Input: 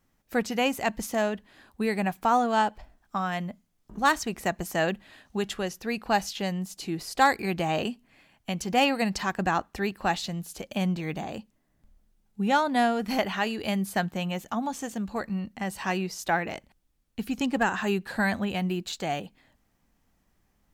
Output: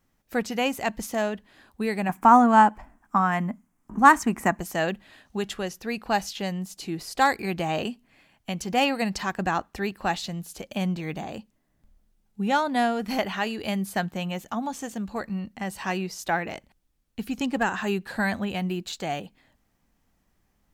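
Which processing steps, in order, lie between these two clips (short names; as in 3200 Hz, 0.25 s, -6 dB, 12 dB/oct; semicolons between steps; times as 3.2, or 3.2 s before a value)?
2.09–4.6 graphic EQ 250/500/1000/2000/4000/8000 Hz +11/-4/+10/+5/-11/+5 dB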